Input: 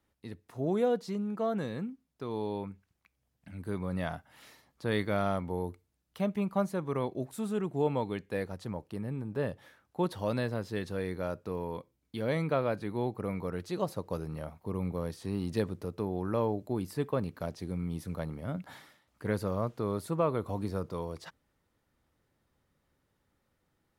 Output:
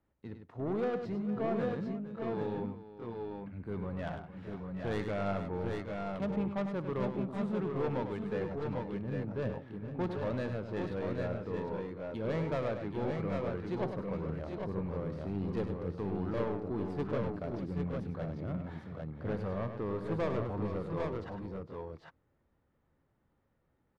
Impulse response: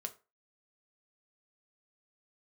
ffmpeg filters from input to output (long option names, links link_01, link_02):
-filter_complex "[0:a]asplit=2[link_01][link_02];[link_02]asetrate=33038,aresample=44100,atempo=1.33484,volume=-16dB[link_03];[link_01][link_03]amix=inputs=2:normalize=0,asoftclip=type=tanh:threshold=-27.5dB,adynamicsmooth=sensitivity=5:basefreq=2100,aecho=1:1:62|101|458|775|801:0.141|0.398|0.2|0.335|0.596,volume=-1dB"